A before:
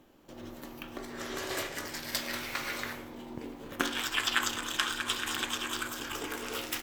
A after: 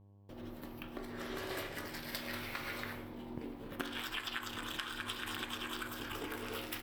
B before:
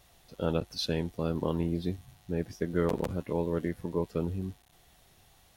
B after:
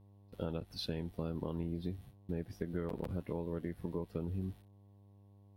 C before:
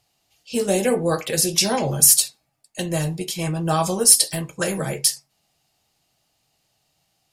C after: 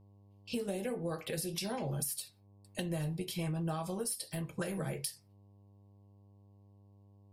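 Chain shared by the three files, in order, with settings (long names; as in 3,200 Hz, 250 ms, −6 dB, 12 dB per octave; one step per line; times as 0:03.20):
noise gate with hold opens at −39 dBFS
hum with harmonics 100 Hz, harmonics 11, −60 dBFS −7 dB per octave
parametric band 6,700 Hz −10.5 dB 0.58 octaves
downward compressor 6 to 1, threshold −32 dBFS
low-shelf EQ 260 Hz +5 dB
level −4.5 dB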